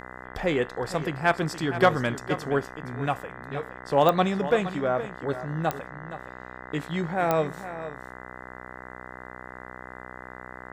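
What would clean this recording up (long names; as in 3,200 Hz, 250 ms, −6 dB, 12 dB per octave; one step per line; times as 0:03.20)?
click removal
hum removal 62.8 Hz, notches 32
echo removal 468 ms −12.5 dB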